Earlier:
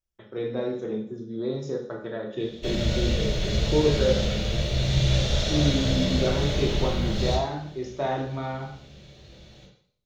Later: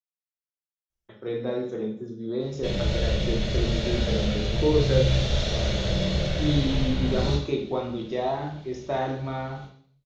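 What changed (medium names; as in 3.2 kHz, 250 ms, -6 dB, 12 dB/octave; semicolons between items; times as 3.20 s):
speech: entry +0.90 s; background: add distance through air 63 m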